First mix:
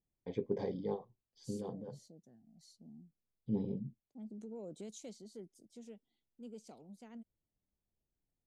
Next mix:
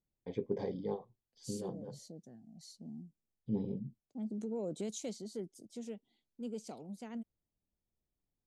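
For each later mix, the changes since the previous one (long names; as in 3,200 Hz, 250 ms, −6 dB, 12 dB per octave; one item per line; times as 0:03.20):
second voice +8.0 dB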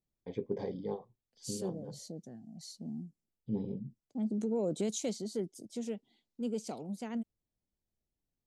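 second voice +6.0 dB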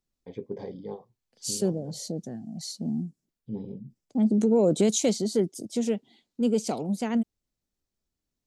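second voice +11.5 dB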